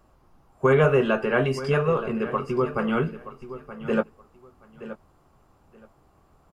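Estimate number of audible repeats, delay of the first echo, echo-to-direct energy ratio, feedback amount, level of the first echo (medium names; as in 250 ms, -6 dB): 2, 924 ms, -14.0 dB, 19%, -14.0 dB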